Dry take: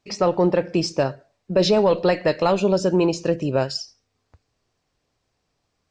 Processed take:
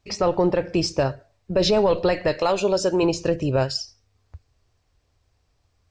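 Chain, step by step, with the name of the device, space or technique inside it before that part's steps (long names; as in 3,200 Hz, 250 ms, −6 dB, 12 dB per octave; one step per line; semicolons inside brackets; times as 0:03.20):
0:02.39–0:03.03: bass and treble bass −9 dB, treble +4 dB
car stereo with a boomy subwoofer (low shelf with overshoot 120 Hz +10.5 dB, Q 1.5; brickwall limiter −12 dBFS, peak gain reduction 4 dB)
level +1 dB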